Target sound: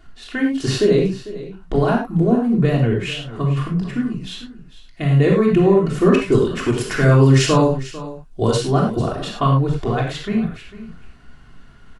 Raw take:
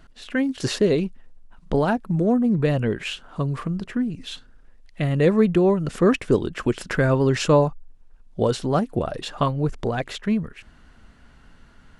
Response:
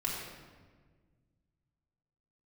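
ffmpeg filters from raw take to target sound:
-filter_complex "[0:a]asettb=1/sr,asplit=3[link_01][link_02][link_03];[link_01]atrim=end=6.314[link_04];[link_02]atrim=start=6.31:end=8.71,asetpts=PTS-STARTPTS,afade=type=in:duration=0.004:curve=qsin,afade=type=out:start_time=2.396:duration=0.004:curve=qsin,highshelf=frequency=3600:gain=7.5[link_05];[link_03]atrim=start=8.706[link_06];[link_04][link_05]acrossfade=duration=0.004:curve1=hsin:curve2=qsin[link_07];[link_07][link_06]acrossfade=duration=0.004:curve1=qsin:curve2=hsin,aecho=1:1:448:0.158[link_08];[1:a]atrim=start_sample=2205,afade=type=out:start_time=0.16:duration=0.01,atrim=end_sample=7497[link_09];[link_08][link_09]afir=irnorm=-1:irlink=0"

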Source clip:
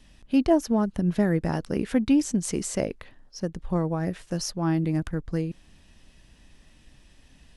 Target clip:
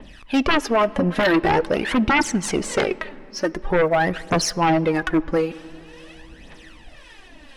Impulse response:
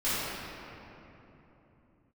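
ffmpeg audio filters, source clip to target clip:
-filter_complex "[0:a]bass=frequency=250:gain=-15,treble=frequency=4000:gain=-12,aphaser=in_gain=1:out_gain=1:delay=4:decay=0.66:speed=0.46:type=triangular,acrossover=split=790[link_01][link_02];[link_01]aeval=exprs='val(0)*(1-0.5/2+0.5/2*cos(2*PI*1.9*n/s))':channel_layout=same[link_03];[link_02]aeval=exprs='val(0)*(1-0.5/2-0.5/2*cos(2*PI*1.9*n/s))':channel_layout=same[link_04];[link_03][link_04]amix=inputs=2:normalize=0,aeval=exprs='0.299*sin(PI/2*6.31*val(0)/0.299)':channel_layout=same,asplit=2[link_05][link_06];[1:a]atrim=start_sample=2205[link_07];[link_06][link_07]afir=irnorm=-1:irlink=0,volume=-31dB[link_08];[link_05][link_08]amix=inputs=2:normalize=0,adynamicequalizer=threshold=0.0141:dfrequency=5800:dqfactor=0.7:tfrequency=5800:tqfactor=0.7:attack=5:release=100:ratio=0.375:range=2:mode=cutabove:tftype=highshelf,volume=-3dB"

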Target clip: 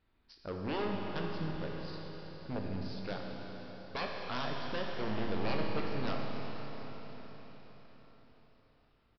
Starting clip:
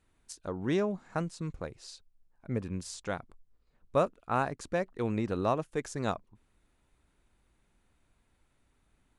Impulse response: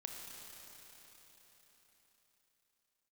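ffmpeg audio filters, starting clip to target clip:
-filter_complex "[0:a]aresample=11025,aeval=exprs='0.0398*(abs(mod(val(0)/0.0398+3,4)-2)-1)':channel_layout=same,aresample=44100,asplit=2[link_01][link_02];[link_02]adelay=20,volume=-11.5dB[link_03];[link_01][link_03]amix=inputs=2:normalize=0[link_04];[1:a]atrim=start_sample=2205,asetrate=39249,aresample=44100[link_05];[link_04][link_05]afir=irnorm=-1:irlink=0,volume=1dB"

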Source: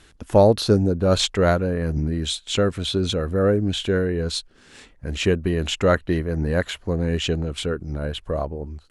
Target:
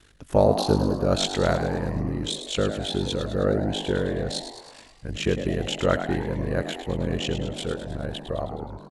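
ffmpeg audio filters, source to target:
ffmpeg -i in.wav -filter_complex "[0:a]aeval=exprs='val(0)*sin(2*PI*25*n/s)':channel_layout=same,asplit=8[link_01][link_02][link_03][link_04][link_05][link_06][link_07][link_08];[link_02]adelay=105,afreqshift=94,volume=-9.5dB[link_09];[link_03]adelay=210,afreqshift=188,volume=-14.1dB[link_10];[link_04]adelay=315,afreqshift=282,volume=-18.7dB[link_11];[link_05]adelay=420,afreqshift=376,volume=-23.2dB[link_12];[link_06]adelay=525,afreqshift=470,volume=-27.8dB[link_13];[link_07]adelay=630,afreqshift=564,volume=-32.4dB[link_14];[link_08]adelay=735,afreqshift=658,volume=-37dB[link_15];[link_01][link_09][link_10][link_11][link_12][link_13][link_14][link_15]amix=inputs=8:normalize=0,volume=-1.5dB" out.wav

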